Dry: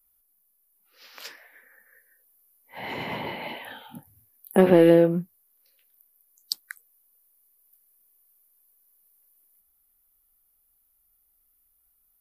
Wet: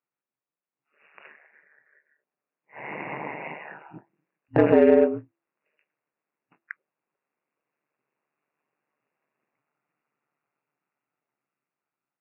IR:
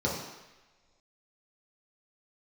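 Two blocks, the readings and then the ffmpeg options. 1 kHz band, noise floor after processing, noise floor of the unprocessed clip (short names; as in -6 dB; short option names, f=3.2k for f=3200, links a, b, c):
-0.5 dB, under -85 dBFS, -68 dBFS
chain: -filter_complex "[0:a]afftfilt=real='re*between(b*sr/4096,190,2800)':imag='im*between(b*sr/4096,190,2800)':win_size=4096:overlap=0.75,aeval=exprs='val(0)*sin(2*PI*74*n/s)':c=same,dynaudnorm=f=870:g=7:m=12.5dB,bandreject=f=335.6:t=h:w=4,bandreject=f=671.2:t=h:w=4,asplit=2[a][b];[b]asoftclip=type=tanh:threshold=-13dB,volume=-6.5dB[c];[a][c]amix=inputs=2:normalize=0,volume=-5dB"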